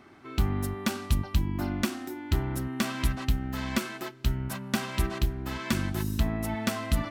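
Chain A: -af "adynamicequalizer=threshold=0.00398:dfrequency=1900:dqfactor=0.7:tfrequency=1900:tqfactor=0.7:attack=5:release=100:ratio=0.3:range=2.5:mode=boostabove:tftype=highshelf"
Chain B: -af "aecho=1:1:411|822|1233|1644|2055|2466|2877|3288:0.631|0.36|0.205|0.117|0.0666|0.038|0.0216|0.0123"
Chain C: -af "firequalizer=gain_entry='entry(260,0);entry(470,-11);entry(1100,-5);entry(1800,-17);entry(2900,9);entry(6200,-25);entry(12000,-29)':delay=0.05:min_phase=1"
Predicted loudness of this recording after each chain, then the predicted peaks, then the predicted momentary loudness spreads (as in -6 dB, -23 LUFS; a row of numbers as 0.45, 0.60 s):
-29.5, -29.0, -31.5 LUFS; -11.5, -13.0, -13.0 dBFS; 4, 3, 4 LU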